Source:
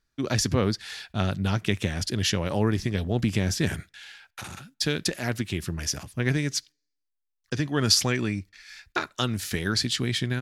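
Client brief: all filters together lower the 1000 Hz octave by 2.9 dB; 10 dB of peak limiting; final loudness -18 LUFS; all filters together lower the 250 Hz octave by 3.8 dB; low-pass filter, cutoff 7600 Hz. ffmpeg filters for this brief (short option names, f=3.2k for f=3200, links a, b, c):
-af "lowpass=7.6k,equalizer=f=250:t=o:g=-5,equalizer=f=1k:t=o:g=-4,volume=13dB,alimiter=limit=-5.5dB:level=0:latency=1"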